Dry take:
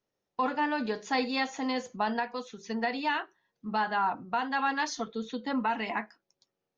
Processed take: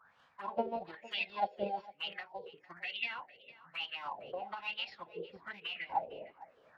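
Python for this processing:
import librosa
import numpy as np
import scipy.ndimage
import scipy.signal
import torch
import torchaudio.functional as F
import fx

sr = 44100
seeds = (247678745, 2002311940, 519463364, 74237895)

p1 = fx.dmg_wind(x, sr, seeds[0], corner_hz=530.0, level_db=-46.0)
p2 = fx.high_shelf(p1, sr, hz=4500.0, db=7.0)
p3 = fx.schmitt(p2, sr, flips_db=-26.5)
p4 = p2 + (p3 * 10.0 ** (-3.5 / 20.0))
p5 = fx.wah_lfo(p4, sr, hz=1.1, low_hz=500.0, high_hz=3000.0, q=17.0)
p6 = fx.env_phaser(p5, sr, low_hz=400.0, high_hz=1600.0, full_db=-46.0)
p7 = fx.pitch_keep_formants(p6, sr, semitones=-4.5)
p8 = p7 + fx.echo_single(p7, sr, ms=456, db=-19.5, dry=0)
y = p8 * 10.0 ** (11.5 / 20.0)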